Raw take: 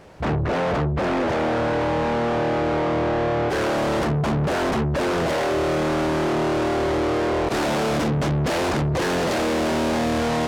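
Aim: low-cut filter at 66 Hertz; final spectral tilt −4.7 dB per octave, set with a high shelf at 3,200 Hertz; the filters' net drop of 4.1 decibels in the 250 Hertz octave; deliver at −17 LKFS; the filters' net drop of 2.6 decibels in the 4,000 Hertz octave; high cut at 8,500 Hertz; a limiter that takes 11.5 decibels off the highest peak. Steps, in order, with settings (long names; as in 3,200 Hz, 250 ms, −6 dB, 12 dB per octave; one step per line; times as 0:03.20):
high-pass filter 66 Hz
low-pass filter 8,500 Hz
parametric band 250 Hz −6 dB
high-shelf EQ 3,200 Hz +3 dB
parametric band 4,000 Hz −5.5 dB
level +15 dB
brickwall limiter −11 dBFS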